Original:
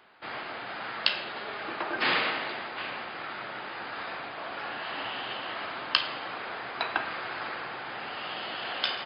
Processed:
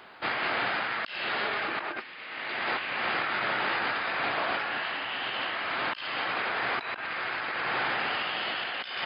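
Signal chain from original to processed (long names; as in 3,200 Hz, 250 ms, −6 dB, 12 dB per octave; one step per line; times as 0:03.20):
dynamic equaliser 2,100 Hz, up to +7 dB, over −43 dBFS, Q 1.1
compressor whose output falls as the input rises −37 dBFS, ratio −1
level +4 dB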